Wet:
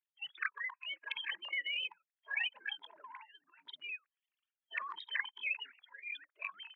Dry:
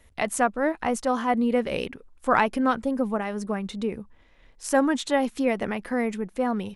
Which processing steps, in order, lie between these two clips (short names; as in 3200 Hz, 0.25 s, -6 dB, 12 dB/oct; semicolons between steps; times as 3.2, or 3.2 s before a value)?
sine-wave speech; spectral gate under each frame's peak -20 dB weak; spectral noise reduction 29 dB; compressor 2.5:1, threshold -48 dBFS, peak gain reduction 12 dB; transient shaper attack -6 dB, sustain +10 dB; resonant high-pass 1700 Hz, resonance Q 1.8; gain +9.5 dB